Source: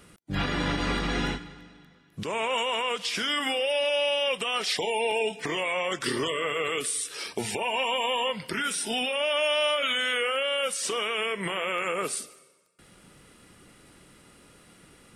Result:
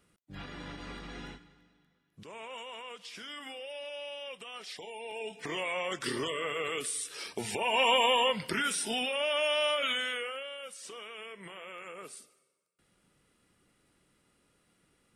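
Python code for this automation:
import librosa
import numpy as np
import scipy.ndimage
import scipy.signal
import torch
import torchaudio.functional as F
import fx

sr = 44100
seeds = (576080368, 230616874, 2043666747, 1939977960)

y = fx.gain(x, sr, db=fx.line((5.03, -16.0), (5.56, -5.5), (7.46, -5.5), (7.89, 3.0), (8.99, -4.0), (9.91, -4.0), (10.58, -16.0)))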